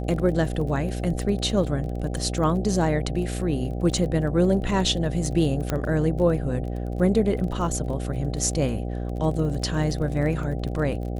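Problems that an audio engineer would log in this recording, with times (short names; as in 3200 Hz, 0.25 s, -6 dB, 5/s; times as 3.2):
buzz 60 Hz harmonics 13 -29 dBFS
crackle 25/s -32 dBFS
5.7 pop -11 dBFS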